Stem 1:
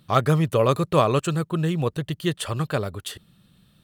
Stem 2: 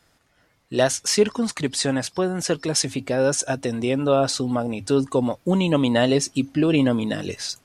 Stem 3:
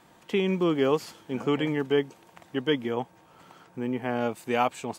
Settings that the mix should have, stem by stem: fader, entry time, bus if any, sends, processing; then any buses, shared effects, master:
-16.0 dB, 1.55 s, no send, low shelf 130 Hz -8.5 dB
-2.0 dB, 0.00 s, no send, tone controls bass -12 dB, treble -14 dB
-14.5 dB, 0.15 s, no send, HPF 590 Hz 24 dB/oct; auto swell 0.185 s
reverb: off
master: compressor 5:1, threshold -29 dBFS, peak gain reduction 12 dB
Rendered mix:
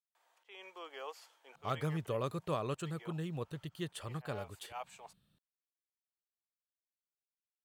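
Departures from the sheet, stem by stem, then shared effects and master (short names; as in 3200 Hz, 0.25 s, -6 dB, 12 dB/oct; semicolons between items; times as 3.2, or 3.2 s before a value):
stem 1: missing low shelf 130 Hz -8.5 dB; stem 2: muted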